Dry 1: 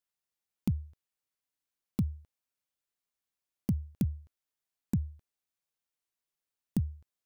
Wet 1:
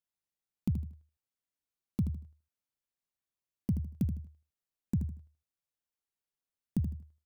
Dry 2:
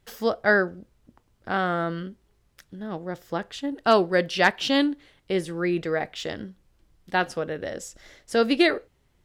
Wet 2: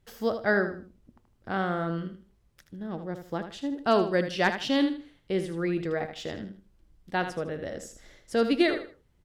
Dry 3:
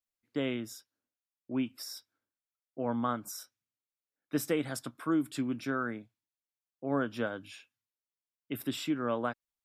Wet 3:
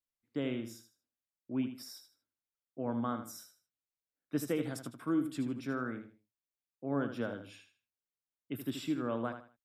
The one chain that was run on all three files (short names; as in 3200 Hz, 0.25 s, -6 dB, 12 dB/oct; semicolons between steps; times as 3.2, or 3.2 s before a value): low shelf 430 Hz +6 dB; on a send: feedback echo 78 ms, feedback 27%, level -9 dB; on the sum: gain -6.5 dB